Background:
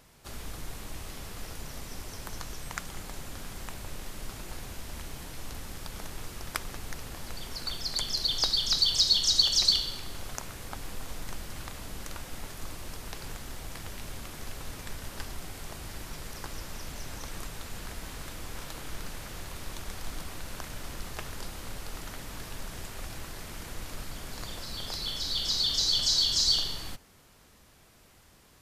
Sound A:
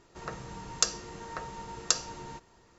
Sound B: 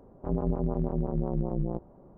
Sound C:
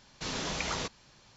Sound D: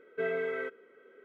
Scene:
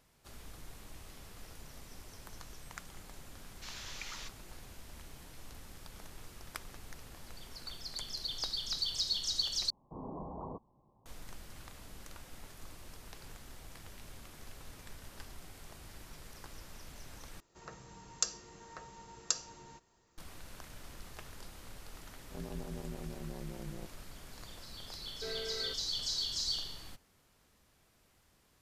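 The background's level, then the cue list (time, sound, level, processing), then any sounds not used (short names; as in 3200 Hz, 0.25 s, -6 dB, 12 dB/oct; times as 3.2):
background -10.5 dB
3.41 add C -9 dB + HPF 1400 Hz
9.7 replace with C -4 dB + rippled Chebyshev low-pass 1100 Hz, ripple 3 dB
17.4 replace with A -11 dB + high shelf 6600 Hz +10.5 dB
22.08 add B -14.5 dB
25.04 add D -15 dB + sample leveller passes 2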